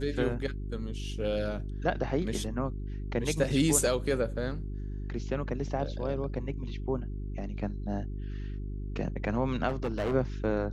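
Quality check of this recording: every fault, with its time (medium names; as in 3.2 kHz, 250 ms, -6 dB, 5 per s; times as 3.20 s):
hum 50 Hz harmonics 8 -36 dBFS
9.68–10.15 s: clipped -26.5 dBFS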